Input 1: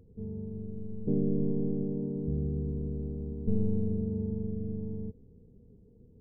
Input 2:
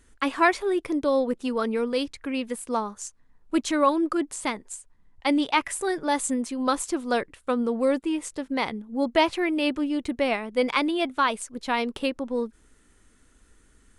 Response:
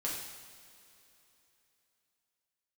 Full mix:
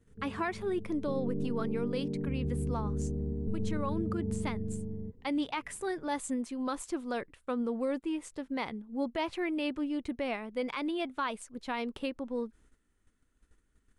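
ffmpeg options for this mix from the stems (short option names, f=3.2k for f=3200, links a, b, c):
-filter_complex "[0:a]dynaudnorm=f=400:g=13:m=11dB,volume=-5.5dB[a];[1:a]bass=f=250:g=3,treble=f=4k:g=-4,volume=-8dB[b];[a][b]amix=inputs=2:normalize=0,agate=range=-9dB:threshold=-60dB:ratio=16:detection=peak,alimiter=limit=-23.5dB:level=0:latency=1:release=105"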